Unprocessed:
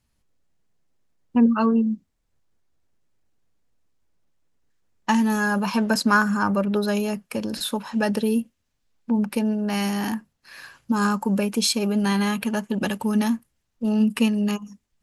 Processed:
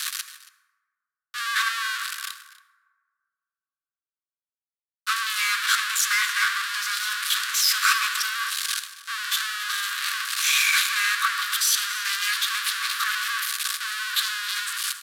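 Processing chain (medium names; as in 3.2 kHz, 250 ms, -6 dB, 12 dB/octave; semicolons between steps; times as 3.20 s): one-bit comparator; low-pass 10 kHz 24 dB/octave; peaking EQ 4.2 kHz -4 dB 0.77 oct; formant shift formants +6 st; rippled Chebyshev high-pass 1.1 kHz, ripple 6 dB; delay 278 ms -13 dB; on a send at -9 dB: reverberation RT60 2.9 s, pre-delay 53 ms; on the sum: three bands expanded up and down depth 70%; trim +8 dB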